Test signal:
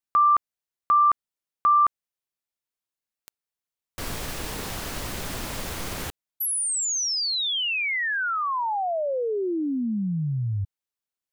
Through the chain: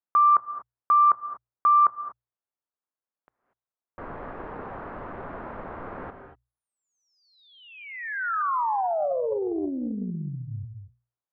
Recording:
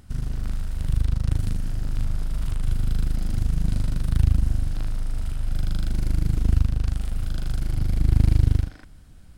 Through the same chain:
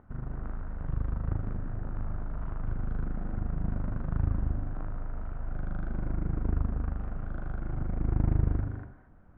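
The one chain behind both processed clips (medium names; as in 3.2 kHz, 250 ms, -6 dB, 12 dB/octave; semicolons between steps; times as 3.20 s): low-pass 1.4 kHz 24 dB/octave; bass shelf 240 Hz -12 dB; hum notches 60/120 Hz; gated-style reverb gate 260 ms rising, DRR 8 dB; loudspeaker Doppler distortion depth 0.26 ms; trim +1.5 dB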